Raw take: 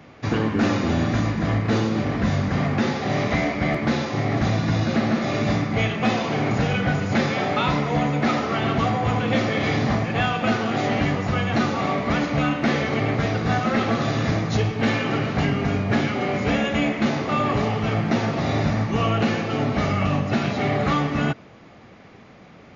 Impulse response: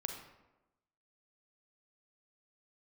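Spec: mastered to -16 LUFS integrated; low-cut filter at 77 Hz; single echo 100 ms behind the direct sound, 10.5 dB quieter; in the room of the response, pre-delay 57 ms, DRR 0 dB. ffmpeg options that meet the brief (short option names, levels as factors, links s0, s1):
-filter_complex "[0:a]highpass=77,aecho=1:1:100:0.299,asplit=2[s0][s1];[1:a]atrim=start_sample=2205,adelay=57[s2];[s1][s2]afir=irnorm=-1:irlink=0,volume=1[s3];[s0][s3]amix=inputs=2:normalize=0,volume=1.5"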